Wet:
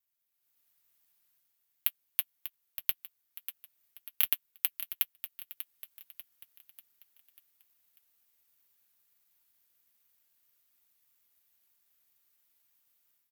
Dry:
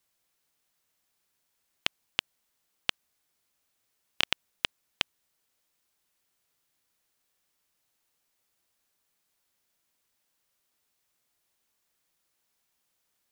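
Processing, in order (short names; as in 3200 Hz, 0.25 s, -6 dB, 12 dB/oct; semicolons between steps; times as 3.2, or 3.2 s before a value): LPF 8100 Hz; tone controls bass +11 dB, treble -7 dB; notch comb 190 Hz; AGC gain up to 12 dB; limiter -4 dBFS, peak gain reduction 3 dB; feedback echo 0.592 s, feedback 47%, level -11.5 dB; careless resampling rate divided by 3×, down none, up zero stuff; tilt +3 dB/oct; gain -15.5 dB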